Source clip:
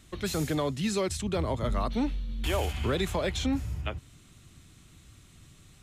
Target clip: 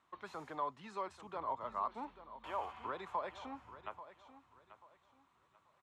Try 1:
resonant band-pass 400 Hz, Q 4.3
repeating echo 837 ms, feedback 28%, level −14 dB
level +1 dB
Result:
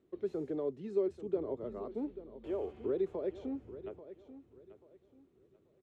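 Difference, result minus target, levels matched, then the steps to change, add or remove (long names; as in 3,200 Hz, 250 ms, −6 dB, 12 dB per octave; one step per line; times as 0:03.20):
1,000 Hz band −19.5 dB
change: resonant band-pass 1,000 Hz, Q 4.3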